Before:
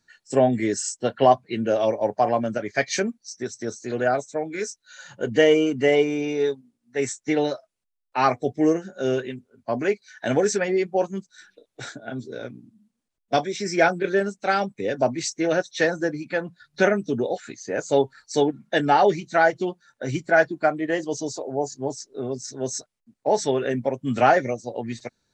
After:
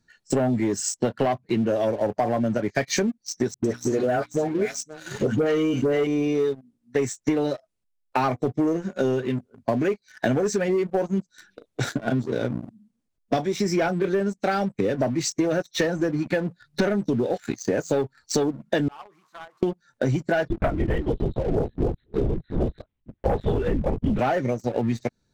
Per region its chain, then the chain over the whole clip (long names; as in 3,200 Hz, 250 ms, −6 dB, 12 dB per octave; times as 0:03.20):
0:03.54–0:06.07: mains-hum notches 60/120/180/240/300 Hz + all-pass dispersion highs, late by 105 ms, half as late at 970 Hz + single-tap delay 520 ms −21 dB
0:18.88–0:19.63: spike at every zero crossing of −19 dBFS + downward compressor 8 to 1, threshold −25 dBFS + resonant band-pass 1,100 Hz, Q 8.3
0:20.48–0:24.19: parametric band 110 Hz +6.5 dB 0.64 octaves + linear-prediction vocoder at 8 kHz whisper
whole clip: low-shelf EQ 400 Hz +11 dB; leveller curve on the samples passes 2; downward compressor 12 to 1, threshold −20 dBFS